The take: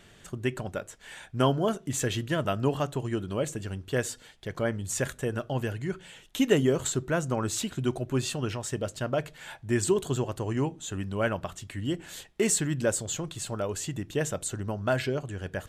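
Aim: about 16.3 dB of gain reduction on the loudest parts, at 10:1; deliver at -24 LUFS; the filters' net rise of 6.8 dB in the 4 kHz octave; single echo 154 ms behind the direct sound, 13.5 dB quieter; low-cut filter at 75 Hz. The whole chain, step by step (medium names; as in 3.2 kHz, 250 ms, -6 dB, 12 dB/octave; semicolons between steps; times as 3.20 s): high-pass 75 Hz; peaking EQ 4 kHz +9 dB; compression 10:1, threshold -34 dBFS; delay 154 ms -13.5 dB; trim +14.5 dB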